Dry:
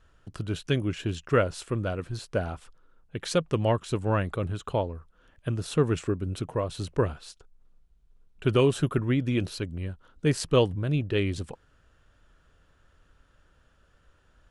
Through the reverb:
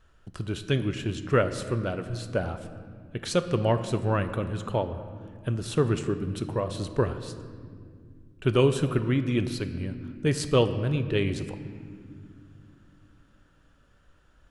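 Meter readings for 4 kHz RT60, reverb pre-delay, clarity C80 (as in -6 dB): 1.4 s, 5 ms, 12.0 dB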